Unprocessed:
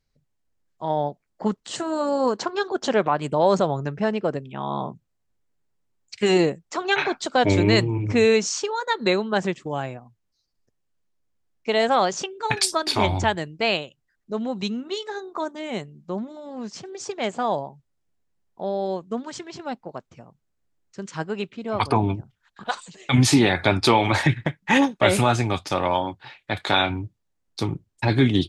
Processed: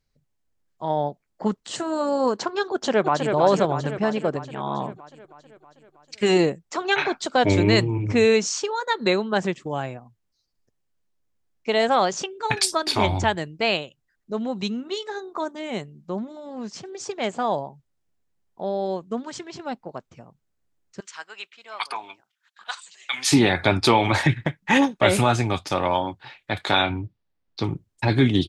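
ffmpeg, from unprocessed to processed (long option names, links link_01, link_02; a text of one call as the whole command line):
ffmpeg -i in.wav -filter_complex "[0:a]asplit=2[link_01][link_02];[link_02]afade=type=in:start_time=2.72:duration=0.01,afade=type=out:start_time=3.33:duration=0.01,aecho=0:1:320|640|960|1280|1600|1920|2240|2560|2880|3200:0.562341|0.365522|0.237589|0.154433|0.100381|0.0652479|0.0424112|0.0275673|0.0179187|0.0116472[link_03];[link_01][link_03]amix=inputs=2:normalize=0,asettb=1/sr,asplit=3[link_04][link_05][link_06];[link_04]atrim=end=21.004[link_07];[link_05]atrim=start=21:end=23.32,asetpts=PTS-STARTPTS,afade=type=in:duration=0.004:curve=qsin,afade=type=out:start_time=2.316:duration=0.004:curve=qsin,highpass=1400[link_08];[link_06]atrim=start=23.316[link_09];[link_07][link_08]acrossfade=duration=0.004:curve1=hsin:curve2=qsin[link_10];[link_10][link_09]acrossfade=duration=0.004:curve1=qsin:curve2=hsin,asettb=1/sr,asplit=3[link_11][link_12][link_13];[link_11]atrim=end=26.834[link_14];[link_12]atrim=start=26.83:end=27.64,asetpts=PTS-STARTPTS,afade=type=in:duration=0.004:curve=qsin,afade=type=out:start_time=0.806:duration=0.004:curve=qsin,lowpass=frequency=4900:width=0.5412,lowpass=frequency=4900:width=1.3066[link_15];[link_13]atrim=start=27.636[link_16];[link_14][link_15]acrossfade=duration=0.004:curve1=hsin:curve2=qsin[link_17];[link_17][link_16]acrossfade=duration=0.004:curve1=qsin:curve2=hsin" out.wav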